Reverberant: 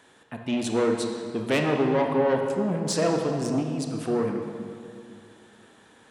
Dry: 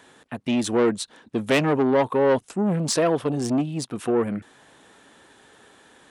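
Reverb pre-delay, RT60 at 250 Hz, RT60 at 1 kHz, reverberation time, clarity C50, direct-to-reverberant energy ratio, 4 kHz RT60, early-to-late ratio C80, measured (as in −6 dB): 22 ms, 2.8 s, 2.2 s, 2.4 s, 4.0 dB, 2.5 dB, 1.6 s, 5.0 dB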